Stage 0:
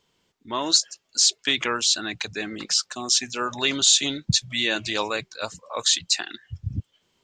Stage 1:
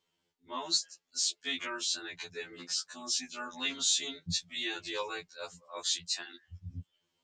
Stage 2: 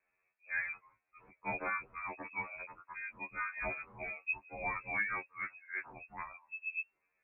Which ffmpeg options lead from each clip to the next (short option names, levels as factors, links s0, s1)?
-af "lowshelf=f=76:g=-7.5,afftfilt=real='re*2*eq(mod(b,4),0)':imag='im*2*eq(mod(b,4),0)':win_size=2048:overlap=0.75,volume=0.355"
-af "lowpass=f=2300:t=q:w=0.5098,lowpass=f=2300:t=q:w=0.6013,lowpass=f=2300:t=q:w=0.9,lowpass=f=2300:t=q:w=2.563,afreqshift=-2700,volume=1.33"